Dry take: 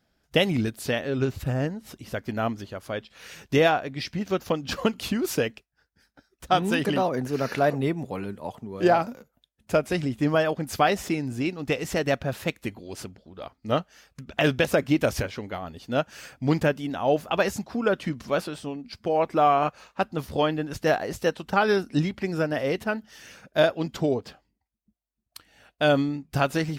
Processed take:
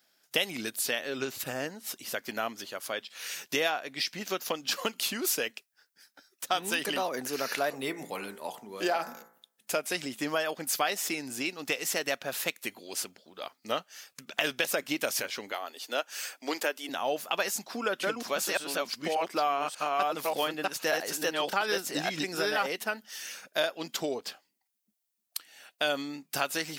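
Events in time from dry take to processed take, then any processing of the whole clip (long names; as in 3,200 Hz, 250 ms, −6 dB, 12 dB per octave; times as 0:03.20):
0:07.72–0:09.77: hum removal 56.96 Hz, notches 39
0:15.52–0:16.89: high-pass filter 300 Hz 24 dB per octave
0:17.40–0:22.67: delay that plays each chunk backwards 587 ms, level −1 dB
whole clip: high-pass filter 210 Hz 12 dB per octave; spectral tilt +3.5 dB per octave; downward compressor 2 to 1, threshold −30 dBFS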